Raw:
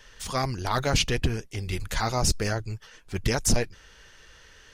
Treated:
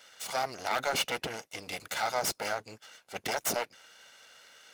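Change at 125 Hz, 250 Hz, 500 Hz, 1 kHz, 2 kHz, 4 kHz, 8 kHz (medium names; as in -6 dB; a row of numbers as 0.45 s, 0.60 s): -22.5 dB, -13.5 dB, -4.5 dB, -2.0 dB, -2.5 dB, -4.5 dB, -6.5 dB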